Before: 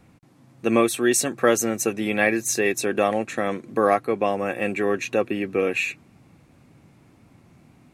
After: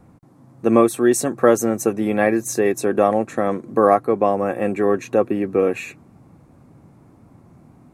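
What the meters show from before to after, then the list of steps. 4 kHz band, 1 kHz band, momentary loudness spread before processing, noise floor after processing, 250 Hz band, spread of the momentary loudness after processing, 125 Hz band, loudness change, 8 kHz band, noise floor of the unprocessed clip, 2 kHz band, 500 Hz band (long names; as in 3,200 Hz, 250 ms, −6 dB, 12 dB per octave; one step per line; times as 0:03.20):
can't be measured, +4.5 dB, 6 LU, −51 dBFS, +5.0 dB, 6 LU, +5.0 dB, +4.0 dB, −2.5 dB, −55 dBFS, −3.5 dB, +5.0 dB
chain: drawn EQ curve 1,100 Hz 0 dB, 2,700 Hz −14 dB, 9,100 Hz −6 dB
level +5 dB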